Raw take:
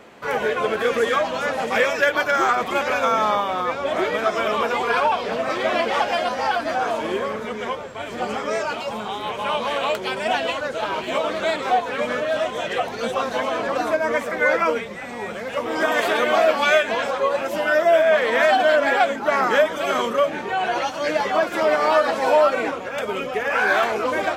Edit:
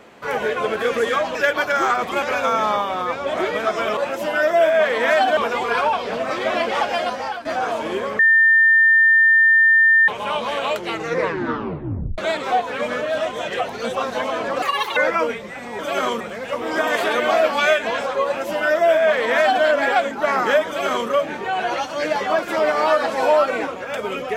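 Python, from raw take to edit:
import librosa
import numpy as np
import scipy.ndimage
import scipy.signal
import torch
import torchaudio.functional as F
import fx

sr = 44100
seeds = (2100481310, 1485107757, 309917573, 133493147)

y = fx.edit(x, sr, fx.cut(start_s=1.35, length_s=0.59),
    fx.fade_out_to(start_s=6.27, length_s=0.37, floor_db=-12.5),
    fx.bleep(start_s=7.38, length_s=1.89, hz=1800.0, db=-10.0),
    fx.tape_stop(start_s=9.94, length_s=1.43),
    fx.speed_span(start_s=13.81, length_s=0.62, speed=1.79),
    fx.duplicate(start_s=17.29, length_s=1.4, to_s=4.56),
    fx.duplicate(start_s=19.71, length_s=0.42, to_s=15.25), tone=tone)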